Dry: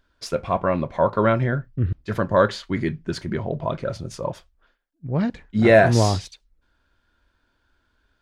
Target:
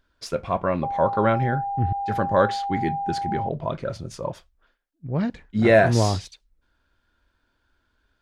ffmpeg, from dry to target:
-filter_complex "[0:a]asettb=1/sr,asplit=3[s0][s1][s2];[s0]atrim=end=0.834[s3];[s1]atrim=start=0.83:end=3.49,asetpts=PTS-STARTPTS,afade=t=in:d=0.004:c=qsin,afade=t=out:st=2.656:d=0.004:c=qsin,aeval=exprs='val(0)+0.0708*sin(2*PI*800*n/s)':c=same[s4];[s2]atrim=start=3.486[s5];[s3][s4]acrossfade=d=0.004:c1=hsin:c2=qsin[s6];[s6][s5]acrossfade=d=0.004:c1=qsin:c2=hsin,volume=0.794"

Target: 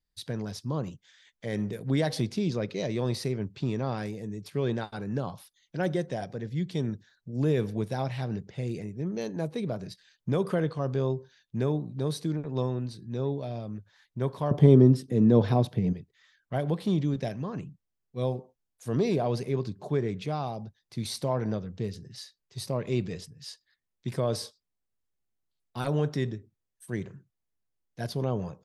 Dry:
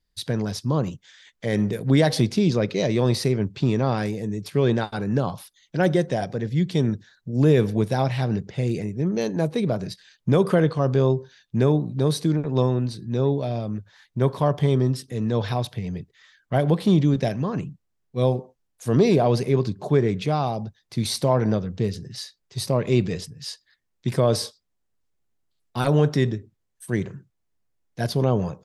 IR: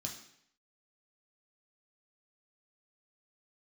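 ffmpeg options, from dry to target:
-filter_complex "[0:a]asettb=1/sr,asplit=3[s0][s1][s2];[s0]atrim=end=14.514[s3];[s1]atrim=start=14.51:end=15.93,asetpts=PTS-STARTPTS,afade=t=in:d=0.004:c=qsin,afade=t=out:st=1.416:d=0.004:c=qsin,equalizer=f=260:w=0.38:g=14.5[s4];[s2]atrim=start=15.926[s5];[s3][s4]acrossfade=d=0.004:c1=hsin:c2=qsin[s6];[s6][s5]acrossfade=d=0.004:c1=qsin:c2=hsin,volume=0.376"

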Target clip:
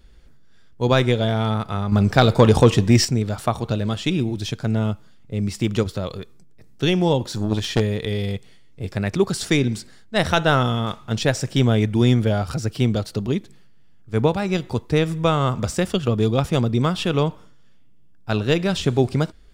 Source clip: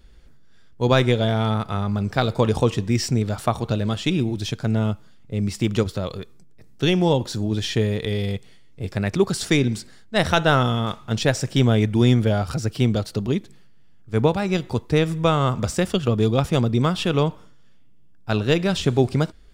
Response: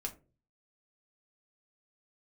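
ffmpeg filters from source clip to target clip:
-filter_complex "[0:a]asettb=1/sr,asplit=3[s0][s1][s2];[s0]atrim=end=1.924[s3];[s1]atrim=start=1.92:end=3.05,asetpts=PTS-STARTPTS,afade=t=in:d=0.004:c=qsin,afade=t=out:st=1.126:d=0.004:c=qsin,acontrast=89[s4];[s2]atrim=start=3.046[s5];[s3][s4]acrossfade=d=0.004:c1=hsin:c2=qsin[s6];[s6][s5]acrossfade=d=0.004:c1=qsin:c2=hsin,asplit=3[s7][s8][s9];[s7]afade=t=out:st=7.27:d=0.02[s10];[s8]aeval=exprs='0.335*(cos(1*acos(clip(val(0)/0.335,-1,1)))-cos(1*PI/2))+0.15*(cos(4*acos(clip(val(0)/0.335,-1,1)))-cos(4*PI/2))+0.0944*(cos(6*acos(clip(val(0)/0.335,-1,1)))-cos(6*PI/2))':c=same,afade=t=in:st=7.27:d=0.02,afade=t=out:st=7.79:d=0.02[s11];[s9]afade=t=in:st=7.79:d=0.02[s12];[s10][s11][s12]amix=inputs=3:normalize=0"

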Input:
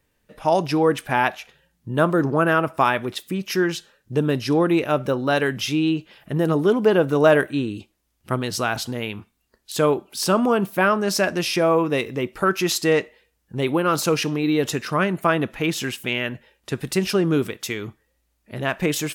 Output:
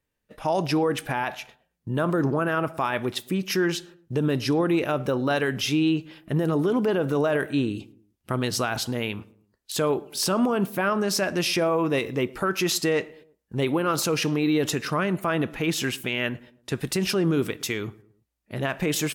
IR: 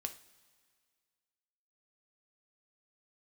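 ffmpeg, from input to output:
-filter_complex "[0:a]agate=range=0.251:threshold=0.00447:ratio=16:detection=peak,alimiter=limit=0.178:level=0:latency=1:release=45,asplit=2[s0][s1];[s1]adelay=111,lowpass=f=1100:p=1,volume=0.1,asplit=2[s2][s3];[s3]adelay=111,lowpass=f=1100:p=1,volume=0.45,asplit=2[s4][s5];[s5]adelay=111,lowpass=f=1100:p=1,volume=0.45[s6];[s0][s2][s4][s6]amix=inputs=4:normalize=0"

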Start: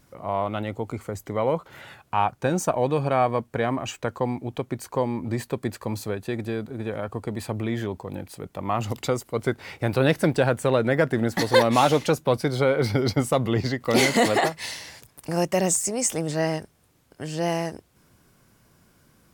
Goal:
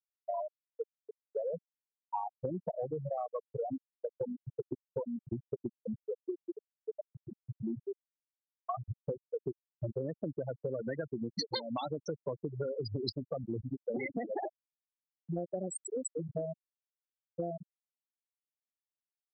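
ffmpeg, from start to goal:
-filter_complex "[0:a]asettb=1/sr,asplit=3[s0][s1][s2];[s0]atrim=end=10.574[s3];[s1]atrim=start=10.57:end=13.22,asetpts=PTS-STARTPTS,afade=t=in:d=0.004:c=qsin,afade=t=out:st=2.646:d=0.004:c=qsin,equalizer=f=5100:w=1:g=13[s4];[s2]atrim=start=13.216[s5];[s3][s4]acrossfade=d=0.004:c1=hsin:c2=qsin[s6];[s6][s5]acrossfade=d=0.004:c1=qsin:c2=hsin,afftfilt=real='re*gte(hypot(re,im),0.355)':imag='im*gte(hypot(re,im),0.355)':win_size=1024:overlap=0.75,acrossover=split=300|3000[s7][s8][s9];[s8]acompressor=threshold=0.0794:ratio=6[s10];[s7][s10][s9]amix=inputs=3:normalize=0,lowshelf=f=250:g=-5.5,acompressor=threshold=0.0158:ratio=12,volume=1.41"

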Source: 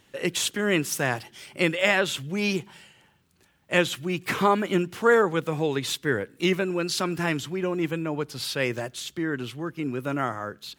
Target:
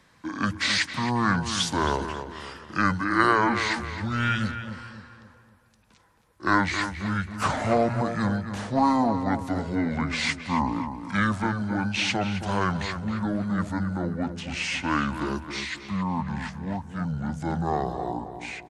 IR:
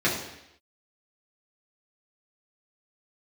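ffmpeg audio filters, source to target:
-filter_complex "[0:a]lowshelf=f=79:g=-7.5,bandreject=f=50:t=h:w=6,bandreject=f=100:t=h:w=6,bandreject=f=150:t=h:w=6,bandreject=f=200:t=h:w=6,acrossover=split=110|1100|3400[s0][s1][s2][s3];[s1]asoftclip=type=tanh:threshold=0.0596[s4];[s0][s4][s2][s3]amix=inputs=4:normalize=0,asplit=2[s5][s6];[s6]adelay=155,lowpass=f=4800:p=1,volume=0.355,asplit=2[s7][s8];[s8]adelay=155,lowpass=f=4800:p=1,volume=0.42,asplit=2[s9][s10];[s10]adelay=155,lowpass=f=4800:p=1,volume=0.42,asplit=2[s11][s12];[s12]adelay=155,lowpass=f=4800:p=1,volume=0.42,asplit=2[s13][s14];[s14]adelay=155,lowpass=f=4800:p=1,volume=0.42[s15];[s5][s7][s9][s11][s13][s15]amix=inputs=6:normalize=0,asetrate=25442,aresample=44100,volume=1.26"

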